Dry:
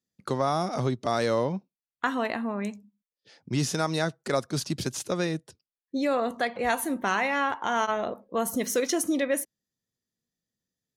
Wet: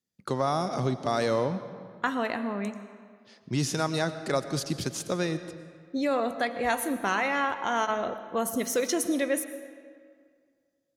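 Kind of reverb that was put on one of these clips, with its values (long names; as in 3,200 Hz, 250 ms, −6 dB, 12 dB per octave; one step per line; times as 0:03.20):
comb and all-pass reverb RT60 2 s, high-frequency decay 0.7×, pre-delay 70 ms, DRR 11.5 dB
level −1 dB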